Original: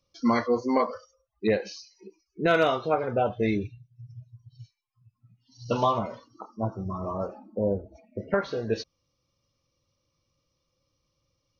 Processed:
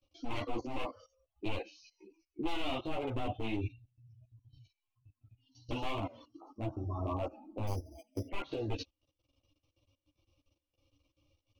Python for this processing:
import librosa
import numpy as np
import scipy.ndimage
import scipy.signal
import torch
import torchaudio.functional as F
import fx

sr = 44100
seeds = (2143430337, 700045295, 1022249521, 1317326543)

y = np.minimum(x, 2.0 * 10.0 ** (-24.0 / 20.0) - x)
y = fx.dynamic_eq(y, sr, hz=590.0, q=1.0, threshold_db=-40.0, ratio=4.0, max_db=-5)
y = fx.level_steps(y, sr, step_db=19)
y = fx.curve_eq(y, sr, hz=(110.0, 190.0, 290.0, 420.0, 720.0, 1700.0, 2700.0, 5000.0, 8300.0), db=(0, -19, 7, -8, 1, -18, 4, -12, -7))
y = fx.resample_bad(y, sr, factor=8, down='filtered', up='hold', at=(7.67, 8.28))
y = fx.ensemble(y, sr)
y = y * 10.0 ** (9.0 / 20.0)